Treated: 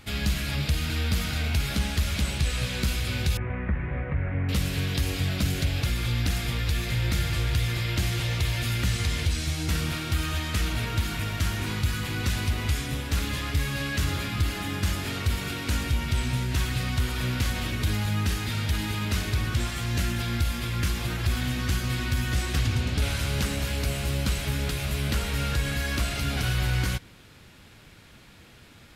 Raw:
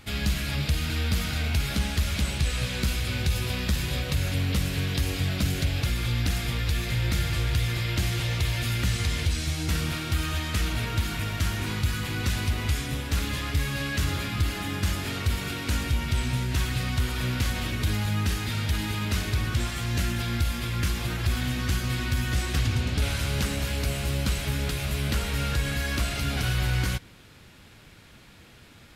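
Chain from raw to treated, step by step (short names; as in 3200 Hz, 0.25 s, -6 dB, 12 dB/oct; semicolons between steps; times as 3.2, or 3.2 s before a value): 3.37–4.49 elliptic low-pass 2100 Hz, stop band 60 dB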